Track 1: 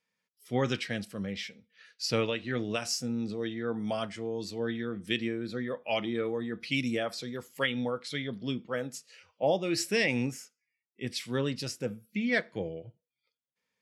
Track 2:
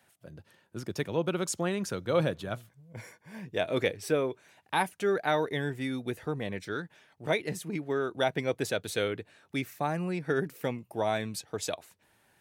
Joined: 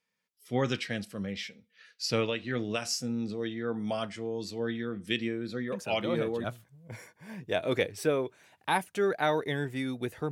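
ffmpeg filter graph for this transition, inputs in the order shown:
-filter_complex "[1:a]asplit=2[a][b];[0:a]apad=whole_dur=10.31,atrim=end=10.31,atrim=end=6.442[c];[b]atrim=start=2.488:end=6.36[d];[a]atrim=start=1.77:end=2.49,asetpts=PTS-STARTPTS,volume=-7dB,afade=t=in:d=0.004:c=hsin,afade=t=out:st=0.716:d=0.004:c=hsin,adelay=5720[e];[c][d]acrossfade=d=0.004:c1=hsin:c2=hsin[f];[f][e]amix=inputs=2:normalize=0"

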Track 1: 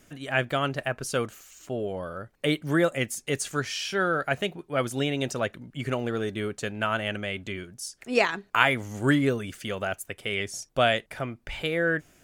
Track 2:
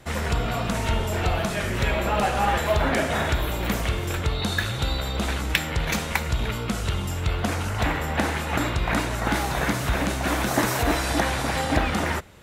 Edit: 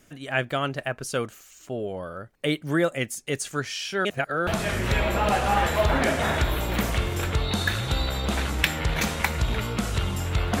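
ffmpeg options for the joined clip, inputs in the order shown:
-filter_complex "[0:a]apad=whole_dur=10.6,atrim=end=10.6,asplit=2[a][b];[a]atrim=end=4.052[c];[b]atrim=start=4.048:end=4.472,asetpts=PTS-STARTPTS,areverse[d];[1:a]atrim=start=1.378:end=7.51[e];[c][d]acrossfade=d=0.004:c1=hsin:c2=hsin[f];[f][e]acrossfade=d=0.004:c1=hsin:c2=hsin"

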